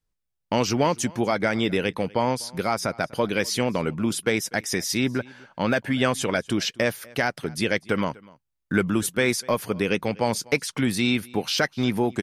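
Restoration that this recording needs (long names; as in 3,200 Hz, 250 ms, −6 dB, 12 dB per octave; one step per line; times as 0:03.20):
echo removal 247 ms −24 dB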